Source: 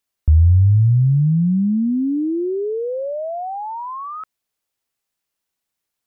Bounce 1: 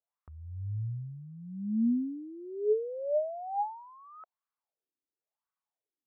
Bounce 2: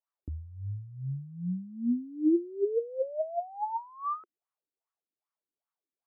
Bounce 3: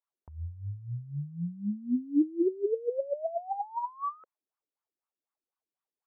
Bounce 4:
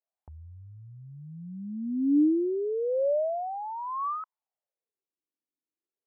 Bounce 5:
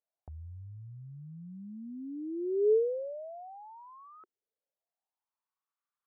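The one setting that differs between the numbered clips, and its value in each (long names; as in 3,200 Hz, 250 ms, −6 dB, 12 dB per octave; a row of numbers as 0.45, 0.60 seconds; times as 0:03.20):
LFO wah, speed: 0.95, 2.5, 4, 0.32, 0.21 Hertz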